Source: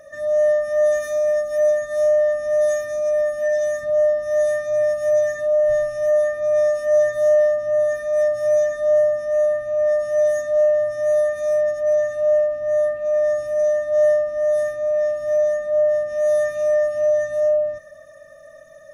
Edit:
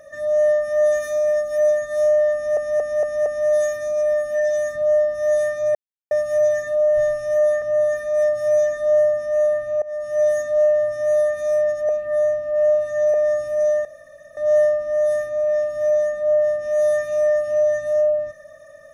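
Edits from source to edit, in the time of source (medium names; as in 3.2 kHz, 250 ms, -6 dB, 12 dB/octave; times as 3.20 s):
2.34 s: stutter 0.23 s, 5 plays
4.83 s: insert silence 0.36 s
6.34–7.61 s: delete
9.81–10.22 s: fade in, from -22 dB
11.88–13.13 s: reverse
13.84 s: insert room tone 0.52 s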